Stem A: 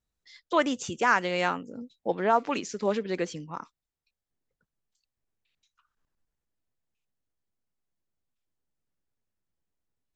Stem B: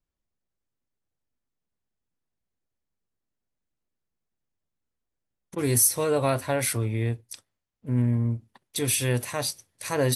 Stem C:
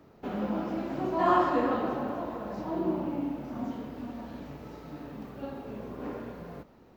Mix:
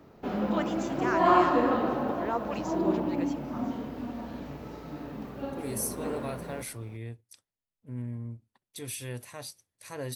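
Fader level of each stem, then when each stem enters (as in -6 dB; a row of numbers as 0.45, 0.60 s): -9.5, -13.0, +2.5 dB; 0.00, 0.00, 0.00 s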